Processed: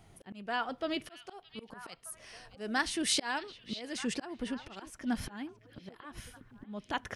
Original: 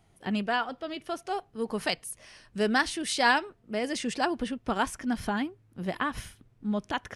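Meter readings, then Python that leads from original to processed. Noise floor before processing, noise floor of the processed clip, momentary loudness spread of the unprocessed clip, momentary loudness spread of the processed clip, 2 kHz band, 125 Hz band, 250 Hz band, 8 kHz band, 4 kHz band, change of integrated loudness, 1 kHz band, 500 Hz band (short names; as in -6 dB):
-63 dBFS, -61 dBFS, 12 LU, 19 LU, -8.0 dB, -9.5 dB, -7.0 dB, -0.5 dB, -3.5 dB, -6.0 dB, -9.5 dB, -9.5 dB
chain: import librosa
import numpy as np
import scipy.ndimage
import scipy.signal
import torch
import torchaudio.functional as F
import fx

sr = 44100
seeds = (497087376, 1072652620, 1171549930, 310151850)

y = fx.auto_swell(x, sr, attack_ms=797.0)
y = fx.echo_stepped(y, sr, ms=617, hz=3200.0, octaves=-1.4, feedback_pct=70, wet_db=-10.5)
y = y * librosa.db_to_amplitude(5.0)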